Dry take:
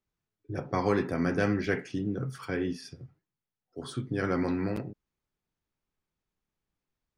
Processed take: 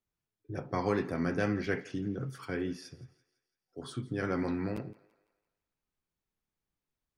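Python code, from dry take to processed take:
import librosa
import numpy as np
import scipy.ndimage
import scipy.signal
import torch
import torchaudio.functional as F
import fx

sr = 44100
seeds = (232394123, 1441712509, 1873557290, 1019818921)

y = fx.wow_flutter(x, sr, seeds[0], rate_hz=2.1, depth_cents=27.0)
y = fx.echo_thinned(y, sr, ms=168, feedback_pct=48, hz=380.0, wet_db=-20.5)
y = F.gain(torch.from_numpy(y), -3.5).numpy()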